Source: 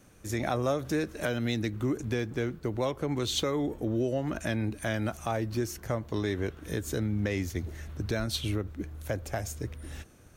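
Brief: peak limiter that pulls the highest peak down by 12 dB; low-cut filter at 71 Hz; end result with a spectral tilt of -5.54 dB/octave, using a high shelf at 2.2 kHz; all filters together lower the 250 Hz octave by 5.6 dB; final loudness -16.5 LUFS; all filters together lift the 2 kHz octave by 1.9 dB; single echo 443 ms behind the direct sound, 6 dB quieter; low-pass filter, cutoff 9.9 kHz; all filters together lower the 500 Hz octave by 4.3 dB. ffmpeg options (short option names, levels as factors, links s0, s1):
-af "highpass=71,lowpass=9900,equalizer=f=250:t=o:g=-6,equalizer=f=500:t=o:g=-3.5,equalizer=f=2000:t=o:g=6.5,highshelf=f=2200:g=-7.5,alimiter=level_in=2:limit=0.0631:level=0:latency=1,volume=0.501,aecho=1:1:443:0.501,volume=13.3"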